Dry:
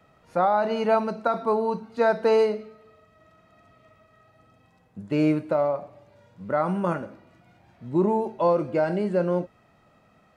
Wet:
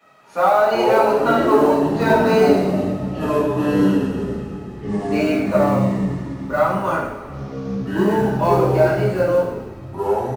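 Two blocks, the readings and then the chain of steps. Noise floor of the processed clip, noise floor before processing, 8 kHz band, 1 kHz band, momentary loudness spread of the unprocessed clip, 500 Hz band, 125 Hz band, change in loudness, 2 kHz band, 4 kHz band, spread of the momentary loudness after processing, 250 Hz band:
-34 dBFS, -61 dBFS, no reading, +7.5 dB, 10 LU, +7.5 dB, +11.0 dB, +6.5 dB, +10.0 dB, +10.0 dB, 13 LU, +9.5 dB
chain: high-pass 660 Hz 6 dB/octave; in parallel at -6.5 dB: saturation -24 dBFS, distortion -11 dB; on the sum: short-mantissa float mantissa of 4-bit; frequency-shifting echo 123 ms, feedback 59%, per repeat -49 Hz, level -13 dB; two-slope reverb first 0.58 s, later 1.8 s, DRR -9 dB; ever faster or slower copies 199 ms, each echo -7 st, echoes 3; trim -2.5 dB

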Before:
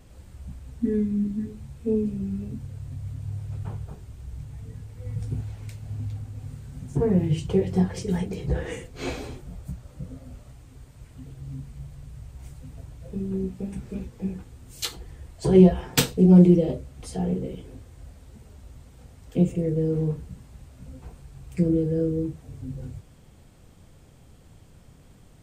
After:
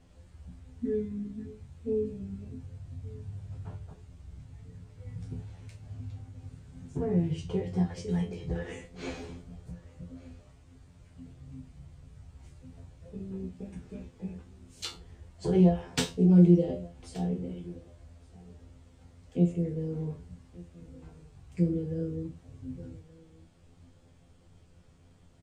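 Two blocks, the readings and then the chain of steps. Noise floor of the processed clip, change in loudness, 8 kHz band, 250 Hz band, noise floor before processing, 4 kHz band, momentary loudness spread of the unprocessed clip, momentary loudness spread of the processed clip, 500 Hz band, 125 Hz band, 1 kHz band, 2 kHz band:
-58 dBFS, -6.0 dB, -9.5 dB, -6.0 dB, -52 dBFS, -7.0 dB, 22 LU, 23 LU, -7.5 dB, -5.5 dB, -6.0 dB, -7.5 dB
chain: low-pass 7.7 kHz 12 dB/octave; feedback comb 86 Hz, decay 0.23 s, harmonics all, mix 90%; on a send: delay 1174 ms -22.5 dB

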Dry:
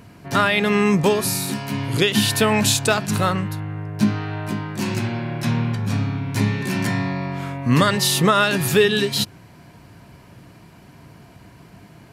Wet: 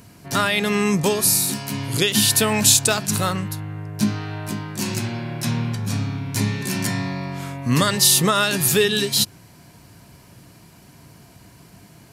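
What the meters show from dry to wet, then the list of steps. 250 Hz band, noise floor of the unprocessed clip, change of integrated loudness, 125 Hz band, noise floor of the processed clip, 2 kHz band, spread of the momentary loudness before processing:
-2.5 dB, -47 dBFS, +0.5 dB, -2.0 dB, -49 dBFS, -2.0 dB, 10 LU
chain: tone controls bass +1 dB, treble +11 dB; trim -3 dB

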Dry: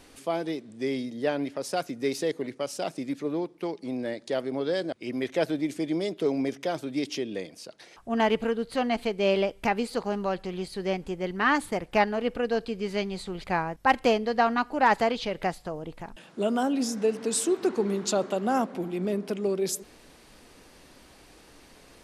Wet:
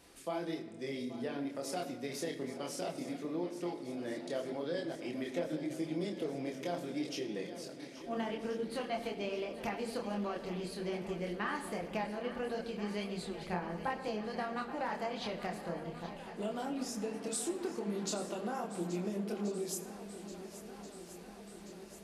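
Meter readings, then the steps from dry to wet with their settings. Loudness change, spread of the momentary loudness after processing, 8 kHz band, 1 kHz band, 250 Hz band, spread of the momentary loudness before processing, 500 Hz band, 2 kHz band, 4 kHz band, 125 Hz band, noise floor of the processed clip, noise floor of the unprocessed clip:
-10.5 dB, 8 LU, -8.0 dB, -12.5 dB, -9.0 dB, 9 LU, -10.5 dB, -12.5 dB, -9.0 dB, -6.5 dB, -50 dBFS, -54 dBFS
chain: high-pass 44 Hz; treble shelf 9.3 kHz +5 dB; chorus voices 6, 1.5 Hz, delay 26 ms, depth 3 ms; compression 12:1, threshold -30 dBFS, peak gain reduction 16.5 dB; shuffle delay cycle 1381 ms, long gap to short 1.5:1, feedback 64%, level -14 dB; simulated room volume 2000 m³, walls mixed, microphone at 0.76 m; trim -4 dB

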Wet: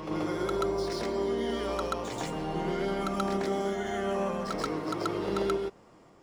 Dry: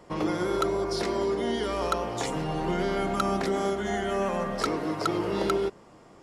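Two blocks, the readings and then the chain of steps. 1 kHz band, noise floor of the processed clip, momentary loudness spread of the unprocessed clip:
-4.0 dB, -57 dBFS, 3 LU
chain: median filter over 3 samples; reverse echo 132 ms -3 dB; trim -5.5 dB

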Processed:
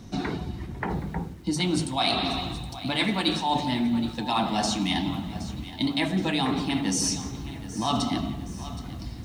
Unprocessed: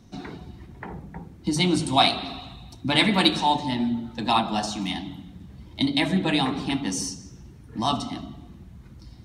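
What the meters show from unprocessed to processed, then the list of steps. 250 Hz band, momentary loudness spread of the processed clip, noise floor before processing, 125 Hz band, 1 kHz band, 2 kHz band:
-0.5 dB, 11 LU, -47 dBFS, 0.0 dB, -3.0 dB, -3.0 dB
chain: reverse; compression 6:1, threshold -31 dBFS, peak gain reduction 16.5 dB; reverse; bit-crushed delay 771 ms, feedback 55%, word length 9-bit, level -14.5 dB; trim +8 dB

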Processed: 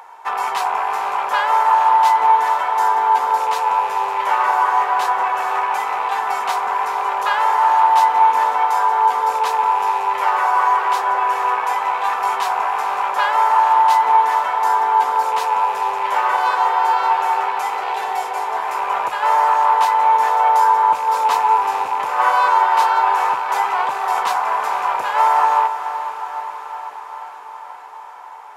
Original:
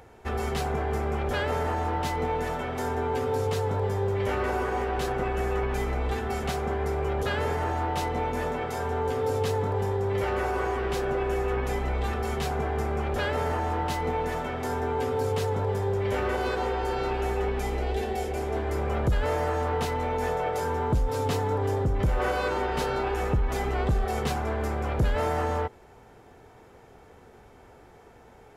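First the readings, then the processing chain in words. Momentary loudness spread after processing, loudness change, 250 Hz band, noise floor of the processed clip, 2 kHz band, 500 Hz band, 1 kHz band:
9 LU, +11.5 dB, under -10 dB, -34 dBFS, +10.5 dB, -2.0 dB, +18.0 dB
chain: rattle on loud lows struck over -28 dBFS, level -32 dBFS; resonant high-pass 960 Hz, resonance Q 6.9; echo that smears into a reverb 461 ms, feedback 70%, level -11 dB; trim +6.5 dB

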